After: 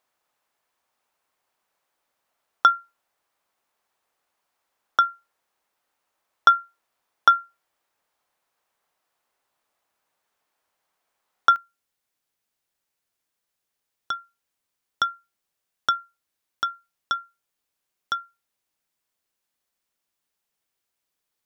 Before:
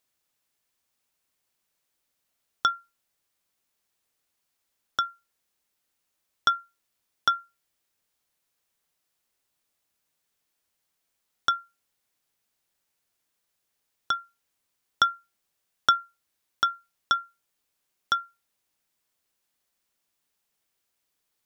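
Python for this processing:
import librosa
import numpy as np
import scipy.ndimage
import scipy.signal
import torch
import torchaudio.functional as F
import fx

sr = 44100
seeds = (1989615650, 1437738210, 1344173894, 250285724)

y = fx.peak_eq(x, sr, hz=890.0, db=fx.steps((0.0, 14.5), (11.56, 2.0)), octaves=2.6)
y = y * librosa.db_to_amplitude(-3.5)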